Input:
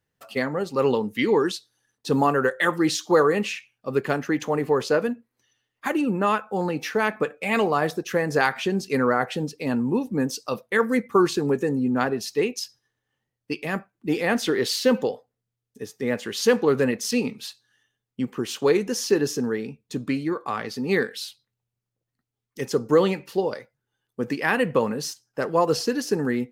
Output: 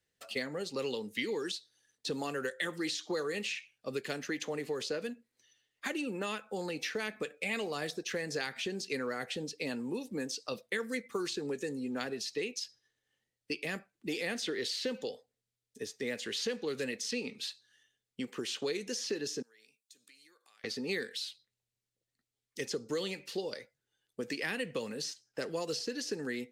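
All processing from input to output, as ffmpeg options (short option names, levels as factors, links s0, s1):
-filter_complex "[0:a]asettb=1/sr,asplit=3[s0][s1][s2];[s0]atrim=end=19.424[s3];[s1]atrim=start=19.42:end=20.64,asetpts=PTS-STARTPTS,afade=t=in:d=0.004:c=qsin,afade=t=out:st=1.216:d=0.004:c=qsin,aderivative,acompressor=threshold=0.00112:ratio=4:attack=3.2:release=140:knee=1:detection=peak[s4];[s2]atrim=start=20.636[s5];[s3][s4]acrossfade=d=0.004:c1=hsin:c2=qsin[s6];[s6][s5]acrossfade=d=0.004:c1=qsin:c2=hsin,equalizer=f=125:t=o:w=1:g=-4,equalizer=f=500:t=o:w=1:g=4,equalizer=f=1000:t=o:w=1:g=-5,equalizer=f=2000:t=o:w=1:g=5,equalizer=f=4000:t=o:w=1:g=7,equalizer=f=8000:t=o:w=1:g=8,acrossover=split=320|2700|6700[s7][s8][s9][s10];[s7]acompressor=threshold=0.0158:ratio=4[s11];[s8]acompressor=threshold=0.0251:ratio=4[s12];[s9]acompressor=threshold=0.02:ratio=4[s13];[s10]acompressor=threshold=0.00355:ratio=4[s14];[s11][s12][s13][s14]amix=inputs=4:normalize=0,volume=0.473"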